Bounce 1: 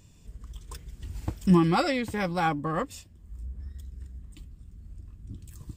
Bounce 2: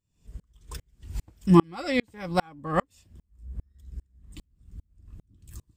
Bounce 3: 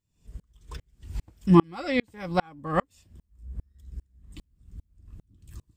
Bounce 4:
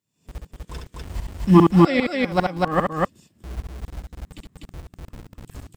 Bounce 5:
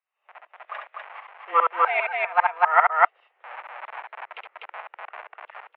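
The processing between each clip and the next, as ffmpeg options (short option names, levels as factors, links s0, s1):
-af "aeval=exprs='val(0)*pow(10,-39*if(lt(mod(-2.5*n/s,1),2*abs(-2.5)/1000),1-mod(-2.5*n/s,1)/(2*abs(-2.5)/1000),(mod(-2.5*n/s,1)-2*abs(-2.5)/1000)/(1-2*abs(-2.5)/1000))/20)':c=same,volume=2.51"
-filter_complex "[0:a]acrossover=split=5100[s0][s1];[s1]acompressor=threshold=0.00158:ratio=4:attack=1:release=60[s2];[s0][s2]amix=inputs=2:normalize=0"
-filter_complex "[0:a]acrossover=split=120|3800[s0][s1][s2];[s0]acrusher=bits=6:mix=0:aa=0.000001[s3];[s3][s1][s2]amix=inputs=3:normalize=0,aecho=1:1:67.06|247.8:0.631|0.891,volume=1.5"
-af "dynaudnorm=f=260:g=5:m=3.76,highpass=f=590:t=q:w=0.5412,highpass=f=590:t=q:w=1.307,lowpass=f=2400:t=q:w=0.5176,lowpass=f=2400:t=q:w=0.7071,lowpass=f=2400:t=q:w=1.932,afreqshift=160,volume=1.33"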